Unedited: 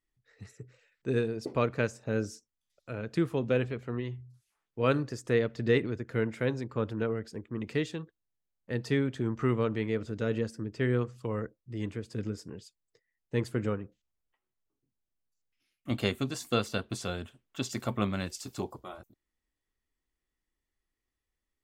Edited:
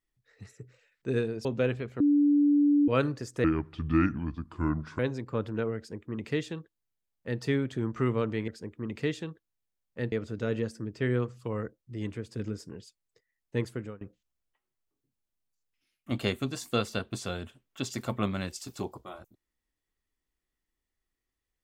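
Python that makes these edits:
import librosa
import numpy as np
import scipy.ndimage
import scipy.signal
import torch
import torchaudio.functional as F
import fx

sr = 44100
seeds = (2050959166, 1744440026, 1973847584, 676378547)

y = fx.edit(x, sr, fx.cut(start_s=1.45, length_s=1.91),
    fx.bleep(start_s=3.91, length_s=0.88, hz=290.0, db=-19.0),
    fx.speed_span(start_s=5.35, length_s=1.07, speed=0.69),
    fx.duplicate(start_s=7.2, length_s=1.64, to_s=9.91),
    fx.fade_out_to(start_s=13.36, length_s=0.44, floor_db=-22.5), tone=tone)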